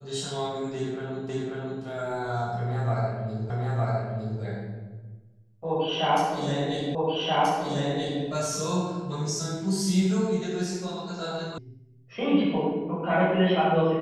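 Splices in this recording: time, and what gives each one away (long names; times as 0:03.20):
0:01.29: the same again, the last 0.54 s
0:03.50: the same again, the last 0.91 s
0:06.95: the same again, the last 1.28 s
0:11.58: cut off before it has died away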